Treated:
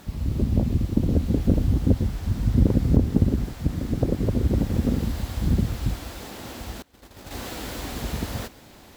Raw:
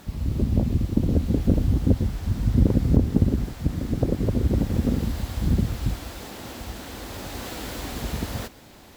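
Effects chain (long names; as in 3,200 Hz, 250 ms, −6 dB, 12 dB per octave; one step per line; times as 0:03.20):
0:06.82–0:07.31: noise gate −33 dBFS, range −25 dB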